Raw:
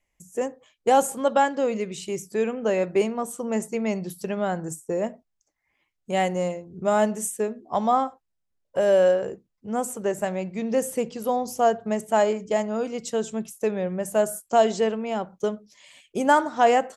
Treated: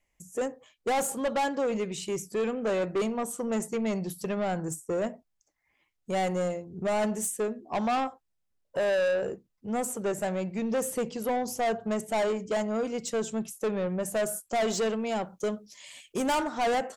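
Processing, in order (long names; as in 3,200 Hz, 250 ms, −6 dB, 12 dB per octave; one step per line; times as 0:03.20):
0:14.67–0:16.44: high-shelf EQ 3,600 Hz +7.5 dB
soft clipping −23.5 dBFS, distortion −7 dB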